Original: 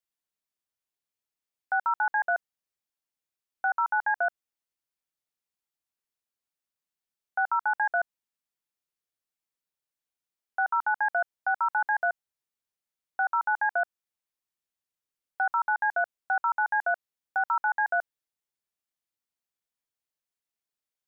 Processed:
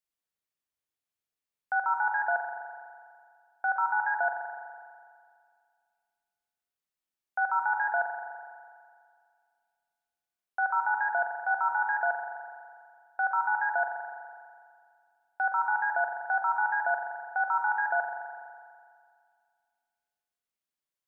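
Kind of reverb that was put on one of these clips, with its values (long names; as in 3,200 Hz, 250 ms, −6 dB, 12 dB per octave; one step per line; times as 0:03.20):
spring reverb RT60 2.1 s, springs 41 ms, chirp 50 ms, DRR 2.5 dB
level −2.5 dB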